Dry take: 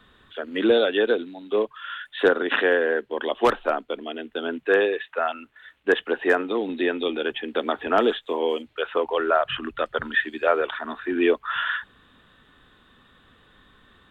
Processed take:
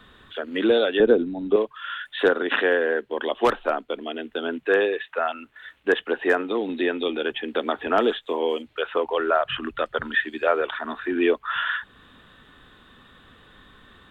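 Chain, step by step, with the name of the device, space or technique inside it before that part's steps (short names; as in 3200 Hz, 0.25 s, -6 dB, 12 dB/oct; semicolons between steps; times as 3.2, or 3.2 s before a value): parallel compression (in parallel at 0 dB: compressor, threshold -37 dBFS, peak gain reduction 22 dB); 1–1.56 on the sum: tilt -4.5 dB/oct; gain -1.5 dB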